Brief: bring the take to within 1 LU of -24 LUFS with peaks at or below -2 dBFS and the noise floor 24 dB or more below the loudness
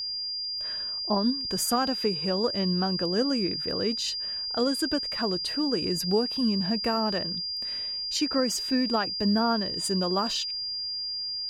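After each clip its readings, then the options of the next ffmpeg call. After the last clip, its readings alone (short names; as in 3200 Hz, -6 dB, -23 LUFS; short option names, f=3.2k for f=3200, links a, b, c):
steady tone 4800 Hz; tone level -30 dBFS; loudness -26.5 LUFS; peak -13.5 dBFS; loudness target -24.0 LUFS
-> -af "bandreject=f=4.8k:w=30"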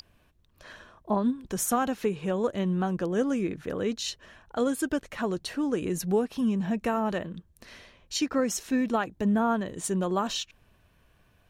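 steady tone none; loudness -28.5 LUFS; peak -14.5 dBFS; loudness target -24.0 LUFS
-> -af "volume=4.5dB"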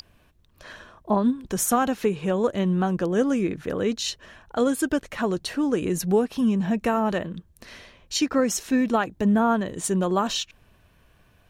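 loudness -24.0 LUFS; peak -10.0 dBFS; noise floor -60 dBFS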